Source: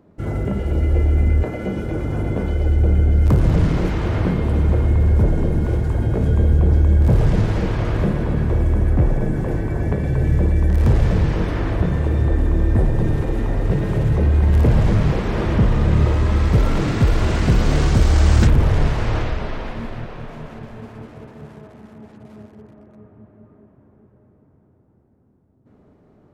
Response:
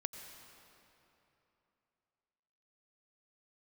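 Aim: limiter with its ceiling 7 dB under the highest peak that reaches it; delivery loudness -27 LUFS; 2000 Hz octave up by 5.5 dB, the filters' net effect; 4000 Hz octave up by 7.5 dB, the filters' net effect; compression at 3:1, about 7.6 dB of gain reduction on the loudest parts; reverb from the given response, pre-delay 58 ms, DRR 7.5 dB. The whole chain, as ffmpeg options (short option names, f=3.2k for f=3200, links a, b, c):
-filter_complex "[0:a]equalizer=f=2k:t=o:g=5,equalizer=f=4k:t=o:g=8,acompressor=threshold=-20dB:ratio=3,alimiter=limit=-17dB:level=0:latency=1,asplit=2[a][b];[1:a]atrim=start_sample=2205,adelay=58[c];[b][c]afir=irnorm=-1:irlink=0,volume=-6.5dB[d];[a][d]amix=inputs=2:normalize=0,volume=-1dB"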